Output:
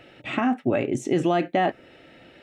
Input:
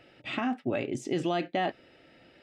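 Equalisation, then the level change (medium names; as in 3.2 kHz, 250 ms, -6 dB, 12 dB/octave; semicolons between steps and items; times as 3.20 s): band-stop 4.9 kHz, Q 7.9; dynamic bell 3.8 kHz, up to -8 dB, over -54 dBFS, Q 1.3; +7.5 dB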